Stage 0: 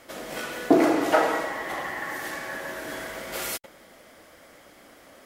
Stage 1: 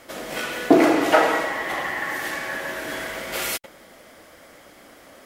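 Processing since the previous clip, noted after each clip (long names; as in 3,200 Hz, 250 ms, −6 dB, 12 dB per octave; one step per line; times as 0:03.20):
dynamic equaliser 2,600 Hz, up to +4 dB, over −43 dBFS, Q 1.1
level +3.5 dB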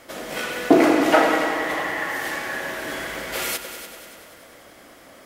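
echo machine with several playback heads 97 ms, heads all three, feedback 56%, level −15 dB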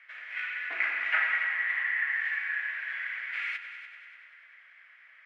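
flat-topped band-pass 2,000 Hz, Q 2.3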